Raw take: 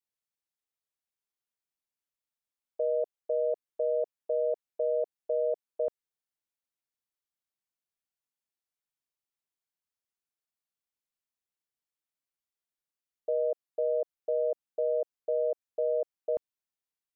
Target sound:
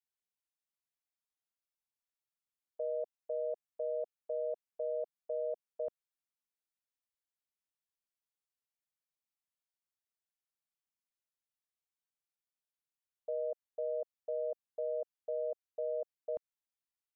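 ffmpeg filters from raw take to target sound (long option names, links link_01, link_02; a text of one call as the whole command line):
ffmpeg -i in.wav -af "equalizer=frequency=350:width=2.7:gain=-10,volume=-6dB" out.wav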